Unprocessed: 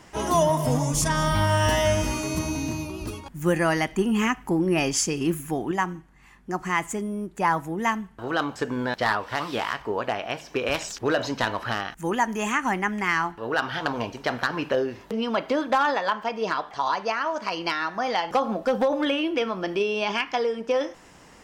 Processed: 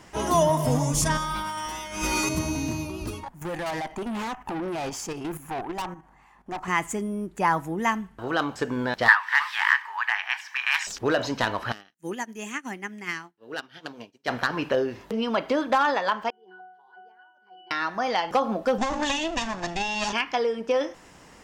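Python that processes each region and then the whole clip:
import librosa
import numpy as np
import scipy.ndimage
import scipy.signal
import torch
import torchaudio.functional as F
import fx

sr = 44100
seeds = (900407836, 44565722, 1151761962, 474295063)

y = fx.chain(x, sr, fx.peak_eq(hz=110.0, db=-12.5, octaves=2.1),
    fx.over_compress(threshold_db=-31.0, ratio=-1.0),
    fx.comb(ms=5.6, depth=0.76), at=(1.17, 2.29))
y = fx.chain(y, sr, fx.peak_eq(hz=830.0, db=15.0, octaves=1.3),
    fx.level_steps(step_db=11),
    fx.tube_stage(drive_db=28.0, bias=0.4), at=(3.23, 6.68))
y = fx.chain(y, sr, fx.ellip_highpass(hz=870.0, order=4, stop_db=40),
    fx.peak_eq(hz=1800.0, db=14.5, octaves=0.65),
    fx.notch(hz=1400.0, q=21.0), at=(9.08, 10.87))
y = fx.chain(y, sr, fx.highpass(hz=190.0, slope=12),
    fx.peak_eq(hz=1000.0, db=-11.0, octaves=1.7),
    fx.upward_expand(threshold_db=-49.0, expansion=2.5), at=(11.72, 14.28))
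y = fx.chain(y, sr, fx.highpass(hz=300.0, slope=24),
    fx.octave_resonator(note='F#', decay_s=0.72), at=(16.3, 17.71))
y = fx.chain(y, sr, fx.lower_of_two(delay_ms=1.1),
    fx.lowpass_res(hz=6900.0, q=3.8), at=(18.78, 20.13))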